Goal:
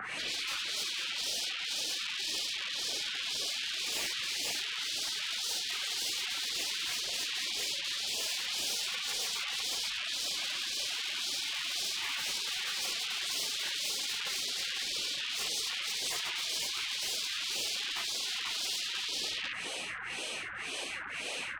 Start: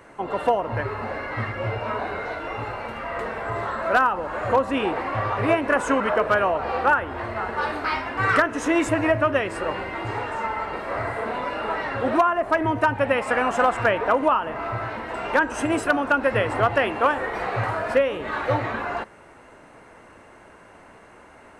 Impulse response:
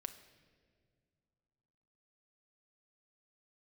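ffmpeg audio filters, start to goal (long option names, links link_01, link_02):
-filter_complex "[0:a]asplit=3[link_01][link_02][link_03];[link_01]afade=type=out:start_time=10.31:duration=0.02[link_04];[link_02]equalizer=frequency=460:width=1.8:gain=14,afade=type=in:start_time=10.31:duration=0.02,afade=type=out:start_time=12.52:duration=0.02[link_05];[link_03]afade=type=in:start_time=12.52:duration=0.02[link_06];[link_04][link_05][link_06]amix=inputs=3:normalize=0,bandreject=frequency=60:width_type=h:width=6,bandreject=frequency=120:width_type=h:width=6,bandreject=frequency=180:width_type=h:width=6,bandreject=frequency=240:width_type=h:width=6,bandreject=frequency=300:width_type=h:width=6,aecho=1:1:52|284|381|491:0.188|0.447|0.224|0.501,acrossover=split=1000[link_07][link_08];[link_07]aeval=exprs='val(0)*(1-1/2+1/2*cos(2*PI*1.9*n/s))':channel_layout=same[link_09];[link_08]aeval=exprs='val(0)*(1-1/2-1/2*cos(2*PI*1.9*n/s))':channel_layout=same[link_10];[link_09][link_10]amix=inputs=2:normalize=0,acrossover=split=2600[link_11][link_12];[link_12]acompressor=threshold=-49dB:ratio=4:attack=1:release=60[link_13];[link_11][link_13]amix=inputs=2:normalize=0,asplit=2[link_14][link_15];[link_15]highpass=frequency=720:poles=1,volume=40dB,asoftclip=type=tanh:threshold=-6dB[link_16];[link_14][link_16]amix=inputs=2:normalize=0,lowpass=frequency=2200:poles=1,volume=-6dB,acompressor=threshold=-16dB:ratio=8,afftfilt=real='re*lt(hypot(re,im),0.0631)':imag='im*lt(hypot(re,im),0.0631)':win_size=1024:overlap=0.75,bass=frequency=250:gain=-14,treble=frequency=4000:gain=-2,volume=1.5dB"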